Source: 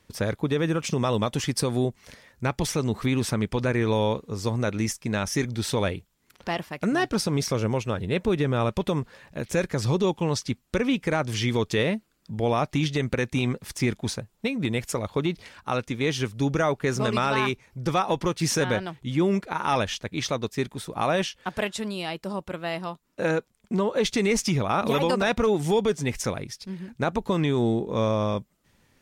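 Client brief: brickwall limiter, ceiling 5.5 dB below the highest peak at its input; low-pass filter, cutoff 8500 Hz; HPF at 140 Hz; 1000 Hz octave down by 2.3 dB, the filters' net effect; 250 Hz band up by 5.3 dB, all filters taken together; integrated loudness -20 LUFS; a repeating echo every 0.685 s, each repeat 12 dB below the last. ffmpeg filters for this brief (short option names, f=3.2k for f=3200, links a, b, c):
-af "highpass=140,lowpass=8.5k,equalizer=f=250:t=o:g=7.5,equalizer=f=1k:t=o:g=-3.5,alimiter=limit=-14dB:level=0:latency=1,aecho=1:1:685|1370|2055:0.251|0.0628|0.0157,volume=5.5dB"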